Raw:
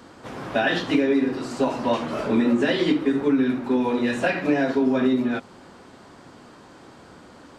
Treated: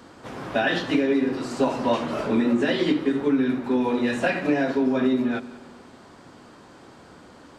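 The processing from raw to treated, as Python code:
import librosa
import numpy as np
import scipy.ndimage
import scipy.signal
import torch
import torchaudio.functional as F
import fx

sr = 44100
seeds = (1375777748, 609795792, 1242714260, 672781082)

p1 = fx.rider(x, sr, range_db=10, speed_s=0.5)
p2 = x + F.gain(torch.from_numpy(p1), -2.0).numpy()
p3 = fx.echo_heads(p2, sr, ms=92, heads='first and second', feedback_pct=48, wet_db=-21)
y = F.gain(torch.from_numpy(p3), -6.0).numpy()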